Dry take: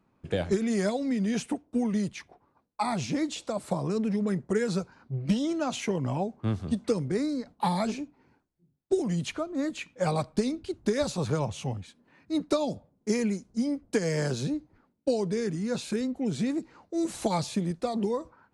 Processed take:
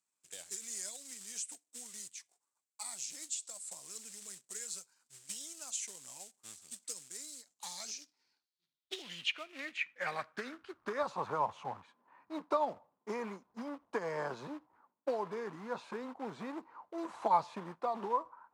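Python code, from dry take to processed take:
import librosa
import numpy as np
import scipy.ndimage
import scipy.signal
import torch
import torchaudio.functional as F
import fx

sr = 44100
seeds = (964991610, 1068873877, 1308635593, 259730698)

y = fx.quant_float(x, sr, bits=2)
y = fx.filter_sweep_bandpass(y, sr, from_hz=7800.0, to_hz=1000.0, start_s=7.41, end_s=11.18, q=4.0)
y = y * 10.0 ** (7.5 / 20.0)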